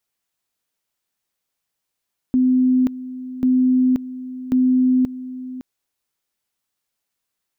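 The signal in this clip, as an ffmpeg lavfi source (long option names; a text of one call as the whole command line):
ffmpeg -f lavfi -i "aevalsrc='pow(10,(-12.5-15.5*gte(mod(t,1.09),0.53))/20)*sin(2*PI*255*t)':duration=3.27:sample_rate=44100" out.wav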